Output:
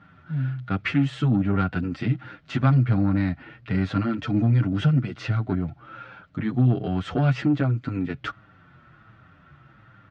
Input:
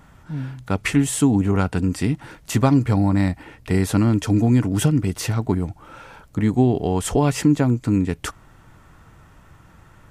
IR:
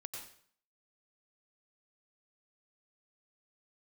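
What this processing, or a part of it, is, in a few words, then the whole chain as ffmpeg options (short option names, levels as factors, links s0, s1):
barber-pole flanger into a guitar amplifier: -filter_complex "[0:a]asplit=2[s0][s1];[s1]adelay=7.4,afreqshift=-1.3[s2];[s0][s2]amix=inputs=2:normalize=1,asoftclip=type=tanh:threshold=0.224,highpass=100,equalizer=f=130:t=q:w=4:g=6,equalizer=f=440:t=q:w=4:g=-6,equalizer=f=930:t=q:w=4:g=-8,equalizer=f=1400:t=q:w=4:g=7,lowpass=f=3900:w=0.5412,lowpass=f=3900:w=1.3066"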